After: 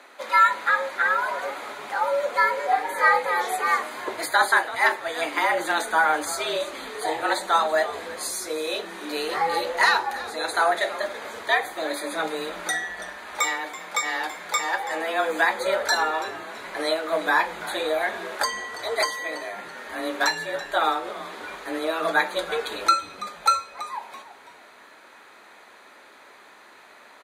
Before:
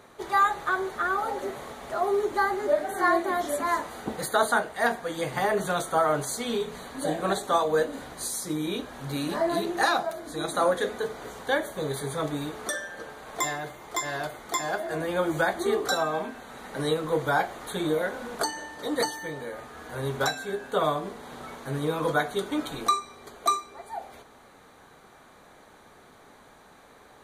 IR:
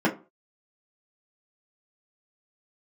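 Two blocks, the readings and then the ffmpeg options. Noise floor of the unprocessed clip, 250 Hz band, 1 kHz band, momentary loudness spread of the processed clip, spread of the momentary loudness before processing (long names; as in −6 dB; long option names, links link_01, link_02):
−54 dBFS, −4.5 dB, +4.5 dB, 13 LU, 11 LU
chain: -filter_complex "[0:a]highpass=43,equalizer=frequency=2300:width_type=o:width=2.1:gain=8,afreqshift=160,asplit=2[link_01][link_02];[link_02]asplit=3[link_03][link_04][link_05];[link_03]adelay=331,afreqshift=-130,volume=-15.5dB[link_06];[link_04]adelay=662,afreqshift=-260,volume=-24.6dB[link_07];[link_05]adelay=993,afreqshift=-390,volume=-33.7dB[link_08];[link_06][link_07][link_08]amix=inputs=3:normalize=0[link_09];[link_01][link_09]amix=inputs=2:normalize=0"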